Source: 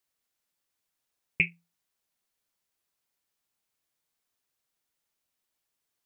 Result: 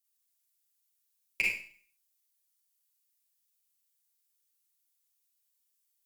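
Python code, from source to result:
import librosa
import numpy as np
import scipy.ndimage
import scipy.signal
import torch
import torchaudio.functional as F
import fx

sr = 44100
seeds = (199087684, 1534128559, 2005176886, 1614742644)

y = np.diff(x, prepend=0.0)
y = fx.cheby_harmonics(y, sr, harmonics=(2, 7, 8), levels_db=(-20, -24, -25), full_scale_db=-18.5)
y = fx.rev_schroeder(y, sr, rt60_s=0.48, comb_ms=33, drr_db=-3.0)
y = y * librosa.db_to_amplitude(3.5)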